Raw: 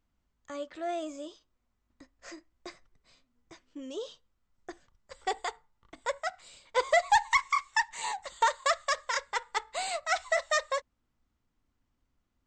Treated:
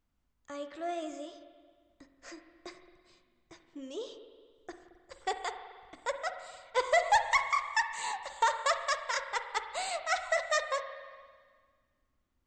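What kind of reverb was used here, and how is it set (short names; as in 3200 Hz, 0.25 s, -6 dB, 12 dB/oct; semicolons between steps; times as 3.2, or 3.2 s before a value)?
spring tank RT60 1.7 s, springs 44/55 ms, chirp 30 ms, DRR 8 dB; gain -2 dB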